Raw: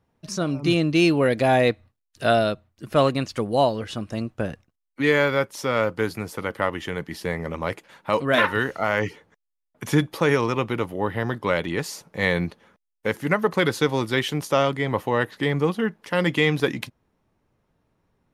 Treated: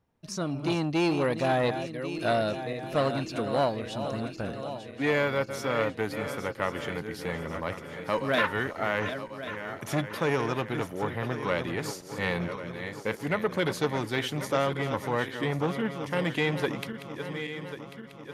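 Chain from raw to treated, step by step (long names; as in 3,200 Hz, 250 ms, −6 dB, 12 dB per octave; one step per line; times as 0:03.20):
feedback delay that plays each chunk backwards 546 ms, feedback 70%, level −10.5 dB
saturating transformer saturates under 860 Hz
level −5 dB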